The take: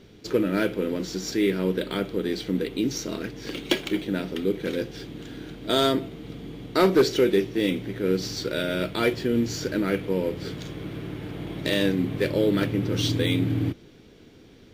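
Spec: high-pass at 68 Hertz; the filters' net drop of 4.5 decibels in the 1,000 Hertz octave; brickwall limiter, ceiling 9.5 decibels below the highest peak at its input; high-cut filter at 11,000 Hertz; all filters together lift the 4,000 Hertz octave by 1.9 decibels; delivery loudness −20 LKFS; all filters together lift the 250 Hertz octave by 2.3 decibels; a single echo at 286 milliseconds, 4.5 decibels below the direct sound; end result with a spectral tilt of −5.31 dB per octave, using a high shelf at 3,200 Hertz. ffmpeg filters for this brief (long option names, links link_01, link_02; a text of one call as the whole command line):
ffmpeg -i in.wav -af "highpass=68,lowpass=11000,equalizer=frequency=250:width_type=o:gain=3.5,equalizer=frequency=1000:width_type=o:gain=-6.5,highshelf=frequency=3200:gain=-8.5,equalizer=frequency=4000:width_type=o:gain=8.5,alimiter=limit=-18.5dB:level=0:latency=1,aecho=1:1:286:0.596,volume=8.5dB" out.wav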